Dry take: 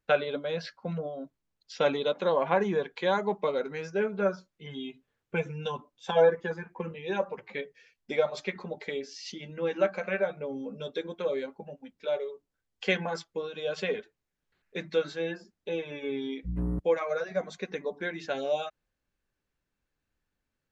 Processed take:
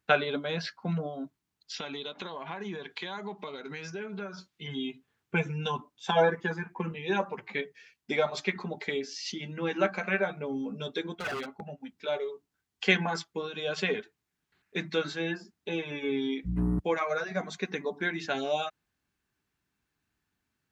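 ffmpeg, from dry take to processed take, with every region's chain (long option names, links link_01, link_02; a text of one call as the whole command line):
ffmpeg -i in.wav -filter_complex "[0:a]asettb=1/sr,asplit=3[link_01][link_02][link_03];[link_01]atrim=end=1.744[link_04];[link_02]atrim=start=1.74:end=4.68,asetpts=PTS-STARTPTS,afade=type=in:duration=0.004:curve=qsin,afade=type=out:start_time=2.936:duration=0.004:curve=qsin,equalizer=frequency=3600:width_type=o:width=1.5:gain=7,acompressor=threshold=-39dB:ratio=4:attack=3.2:release=140:knee=1:detection=peak[link_05];[link_03]atrim=start=4.676[link_06];[link_04][link_05]acrossfade=duration=0.004:curve1=hsin:curve2=qsin[link_07];[link_07][link_06]acrossfade=duration=0.004:curve1=qsin:curve2=hsin,asettb=1/sr,asplit=3[link_08][link_09][link_10];[link_08]atrim=end=11.154[link_11];[link_09]atrim=start=11.15:end=11.81,asetpts=PTS-STARTPTS,afade=type=in:duration=0.004:curve=qsin,afade=type=out:start_time=0.656:duration=0.004:curve=qsin,highshelf=frequency=4900:gain=-5.5,aeval=exprs='0.0282*(abs(mod(val(0)/0.0282+3,4)-2)-1)':channel_layout=same,aecho=1:1:1.5:0.39,atrim=end_sample=29106[link_12];[link_10]atrim=start=11.806[link_13];[link_11][link_12]acrossfade=duration=0.004:curve1=hsin:curve2=qsin[link_14];[link_14][link_13]acrossfade=duration=0.004:curve1=qsin:curve2=hsin,highpass=74,equalizer=frequency=530:width_type=o:width=0.33:gain=-13,volume=4.5dB" out.wav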